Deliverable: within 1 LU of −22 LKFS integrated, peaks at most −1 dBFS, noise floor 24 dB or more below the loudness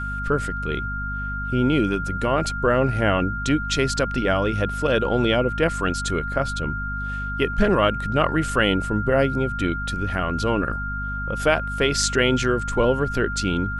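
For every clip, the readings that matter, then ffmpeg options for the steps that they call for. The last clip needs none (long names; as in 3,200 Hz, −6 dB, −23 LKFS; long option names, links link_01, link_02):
mains hum 50 Hz; hum harmonics up to 250 Hz; level of the hum −28 dBFS; interfering tone 1,400 Hz; level of the tone −28 dBFS; integrated loudness −22.5 LKFS; sample peak −4.0 dBFS; target loudness −22.0 LKFS
→ -af "bandreject=frequency=50:width_type=h:width=4,bandreject=frequency=100:width_type=h:width=4,bandreject=frequency=150:width_type=h:width=4,bandreject=frequency=200:width_type=h:width=4,bandreject=frequency=250:width_type=h:width=4"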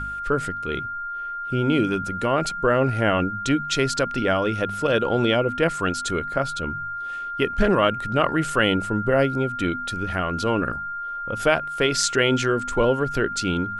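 mains hum none found; interfering tone 1,400 Hz; level of the tone −28 dBFS
→ -af "bandreject=frequency=1400:width=30"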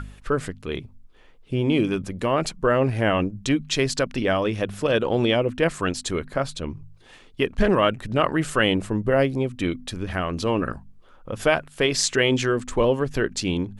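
interfering tone none found; integrated loudness −23.5 LKFS; sample peak −4.5 dBFS; target loudness −22.0 LKFS
→ -af "volume=1.5dB"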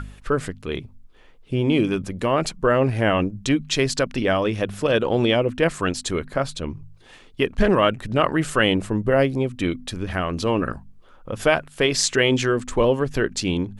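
integrated loudness −22.0 LKFS; sample peak −3.0 dBFS; background noise floor −49 dBFS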